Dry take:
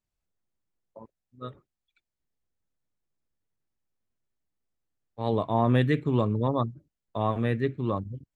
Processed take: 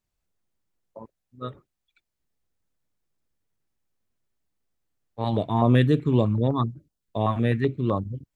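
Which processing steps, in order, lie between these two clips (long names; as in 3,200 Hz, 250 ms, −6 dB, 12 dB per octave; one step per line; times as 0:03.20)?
0:05.24–0:08.03: notch on a step sequencer 7.9 Hz 440–2,100 Hz
level +4.5 dB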